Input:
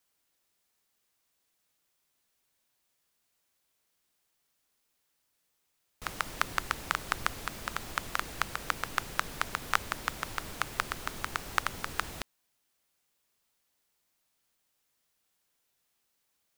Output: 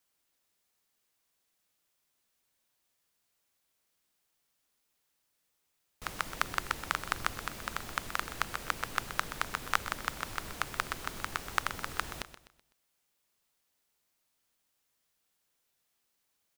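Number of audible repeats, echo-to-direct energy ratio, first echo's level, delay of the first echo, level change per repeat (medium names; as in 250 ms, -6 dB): 3, -12.0 dB, -12.5 dB, 126 ms, -8.5 dB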